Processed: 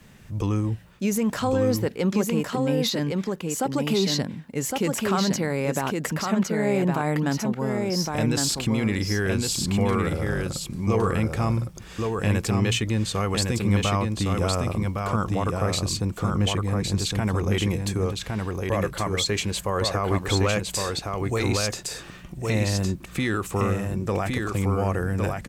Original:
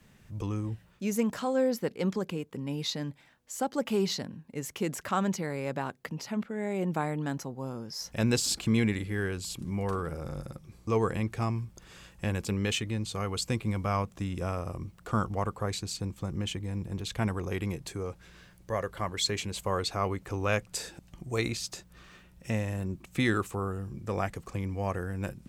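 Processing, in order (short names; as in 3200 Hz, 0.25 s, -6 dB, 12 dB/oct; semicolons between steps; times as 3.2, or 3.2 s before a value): limiter -24 dBFS, peak gain reduction 11.5 dB; 20.12–20.61 sample leveller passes 1; on a send: echo 1.111 s -3.5 dB; on the sum: gain +8.5 dB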